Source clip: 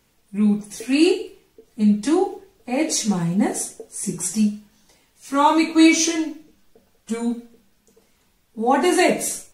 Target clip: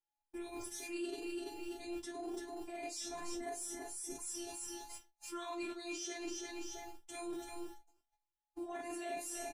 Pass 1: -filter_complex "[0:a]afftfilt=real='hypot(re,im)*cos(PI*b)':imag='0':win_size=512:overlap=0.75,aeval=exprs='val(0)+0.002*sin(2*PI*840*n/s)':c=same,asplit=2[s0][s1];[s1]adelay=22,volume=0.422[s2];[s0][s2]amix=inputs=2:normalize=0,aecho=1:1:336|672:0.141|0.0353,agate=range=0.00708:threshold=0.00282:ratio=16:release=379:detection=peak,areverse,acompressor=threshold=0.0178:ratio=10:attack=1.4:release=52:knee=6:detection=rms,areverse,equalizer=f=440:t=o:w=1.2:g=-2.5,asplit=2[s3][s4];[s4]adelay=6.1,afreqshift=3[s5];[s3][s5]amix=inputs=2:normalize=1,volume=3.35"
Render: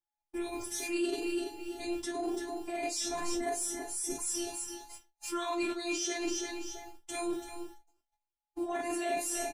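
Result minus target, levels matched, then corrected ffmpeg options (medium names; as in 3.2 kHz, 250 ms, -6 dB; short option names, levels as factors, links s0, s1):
compression: peak gain reduction -9 dB
-filter_complex "[0:a]afftfilt=real='hypot(re,im)*cos(PI*b)':imag='0':win_size=512:overlap=0.75,aeval=exprs='val(0)+0.002*sin(2*PI*840*n/s)':c=same,asplit=2[s0][s1];[s1]adelay=22,volume=0.422[s2];[s0][s2]amix=inputs=2:normalize=0,aecho=1:1:336|672:0.141|0.0353,agate=range=0.00708:threshold=0.00282:ratio=16:release=379:detection=peak,areverse,acompressor=threshold=0.00562:ratio=10:attack=1.4:release=52:knee=6:detection=rms,areverse,equalizer=f=440:t=o:w=1.2:g=-2.5,asplit=2[s3][s4];[s4]adelay=6.1,afreqshift=3[s5];[s3][s5]amix=inputs=2:normalize=1,volume=3.35"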